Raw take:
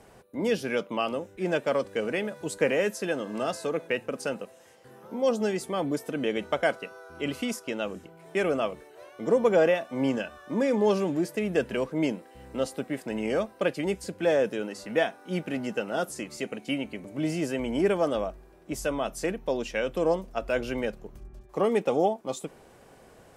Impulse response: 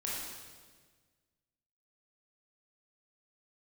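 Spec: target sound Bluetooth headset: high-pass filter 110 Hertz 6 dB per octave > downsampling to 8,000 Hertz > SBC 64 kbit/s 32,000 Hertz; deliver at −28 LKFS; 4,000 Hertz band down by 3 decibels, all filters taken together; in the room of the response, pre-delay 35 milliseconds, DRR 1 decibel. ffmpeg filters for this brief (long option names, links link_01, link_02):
-filter_complex "[0:a]equalizer=frequency=4000:width_type=o:gain=-4.5,asplit=2[link_01][link_02];[1:a]atrim=start_sample=2205,adelay=35[link_03];[link_02][link_03]afir=irnorm=-1:irlink=0,volume=-4.5dB[link_04];[link_01][link_04]amix=inputs=2:normalize=0,highpass=frequency=110:poles=1,aresample=8000,aresample=44100,volume=-1dB" -ar 32000 -c:a sbc -b:a 64k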